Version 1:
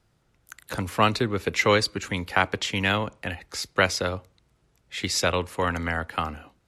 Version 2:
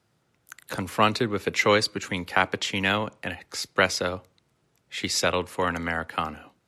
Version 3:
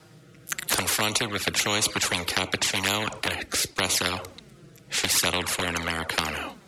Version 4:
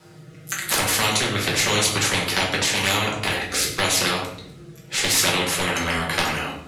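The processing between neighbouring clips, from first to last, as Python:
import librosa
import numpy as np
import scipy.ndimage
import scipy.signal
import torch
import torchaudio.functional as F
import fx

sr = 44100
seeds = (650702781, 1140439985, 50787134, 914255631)

y1 = scipy.signal.sosfilt(scipy.signal.butter(2, 120.0, 'highpass', fs=sr, output='sos'), x)
y2 = fx.env_flanger(y1, sr, rest_ms=6.4, full_db=-19.5)
y2 = fx.rotary(y2, sr, hz=0.9)
y2 = fx.spectral_comp(y2, sr, ratio=4.0)
y2 = y2 * 10.0 ** (7.5 / 20.0)
y3 = y2 + 10.0 ** (-16.5 / 20.0) * np.pad(y2, (int(96 * sr / 1000.0), 0))[:len(y2)]
y3 = fx.room_shoebox(y3, sr, seeds[0], volume_m3=94.0, walls='mixed', distance_m=1.1)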